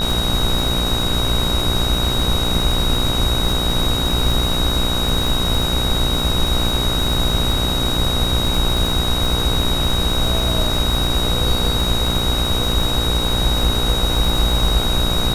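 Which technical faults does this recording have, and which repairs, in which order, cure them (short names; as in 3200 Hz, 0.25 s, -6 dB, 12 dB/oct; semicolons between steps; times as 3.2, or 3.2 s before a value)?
buzz 60 Hz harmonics 26 -23 dBFS
crackle 44/s -21 dBFS
tone 3800 Hz -21 dBFS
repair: de-click; de-hum 60 Hz, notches 26; notch 3800 Hz, Q 30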